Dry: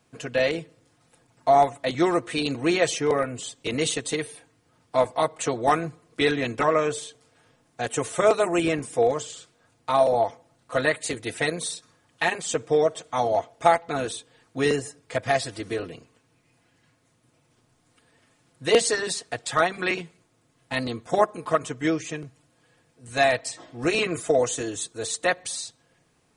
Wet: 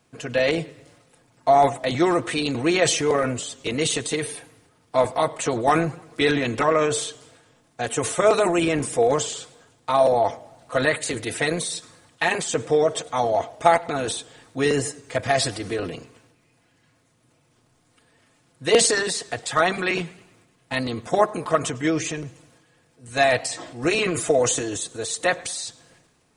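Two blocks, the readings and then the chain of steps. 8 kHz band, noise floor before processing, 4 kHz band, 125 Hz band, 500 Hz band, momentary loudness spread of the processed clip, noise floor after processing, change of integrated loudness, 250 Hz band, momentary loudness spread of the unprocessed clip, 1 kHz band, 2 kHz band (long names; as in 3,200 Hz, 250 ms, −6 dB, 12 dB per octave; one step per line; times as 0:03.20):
+5.0 dB, −66 dBFS, +3.5 dB, +4.0 dB, +2.0 dB, 11 LU, −63 dBFS, +2.5 dB, +2.5 dB, 11 LU, +2.0 dB, +2.5 dB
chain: transient designer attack +1 dB, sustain +8 dB
feedback echo with a swinging delay time 103 ms, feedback 55%, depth 153 cents, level −24 dB
level +1 dB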